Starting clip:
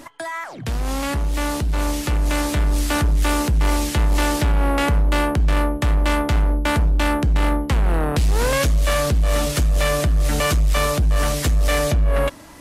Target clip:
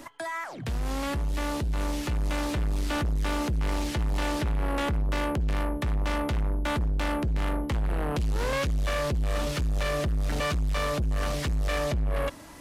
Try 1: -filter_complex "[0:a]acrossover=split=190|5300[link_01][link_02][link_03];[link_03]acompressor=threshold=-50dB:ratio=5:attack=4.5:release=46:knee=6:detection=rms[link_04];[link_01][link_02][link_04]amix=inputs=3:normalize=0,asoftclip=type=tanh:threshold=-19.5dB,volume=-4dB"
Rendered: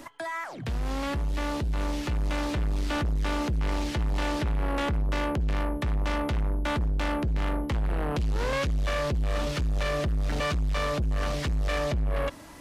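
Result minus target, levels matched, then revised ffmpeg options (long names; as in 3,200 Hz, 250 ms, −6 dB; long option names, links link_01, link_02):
downward compressor: peak gain reduction +7.5 dB
-filter_complex "[0:a]acrossover=split=190|5300[link_01][link_02][link_03];[link_03]acompressor=threshold=-40.5dB:ratio=5:attack=4.5:release=46:knee=6:detection=rms[link_04];[link_01][link_02][link_04]amix=inputs=3:normalize=0,asoftclip=type=tanh:threshold=-19.5dB,volume=-4dB"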